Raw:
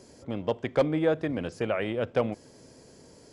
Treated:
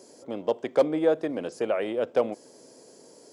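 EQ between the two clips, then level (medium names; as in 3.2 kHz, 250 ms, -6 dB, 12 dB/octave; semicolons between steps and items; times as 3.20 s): high-pass 380 Hz 12 dB/octave; peaking EQ 2.1 kHz -10 dB 2.5 oct; +6.5 dB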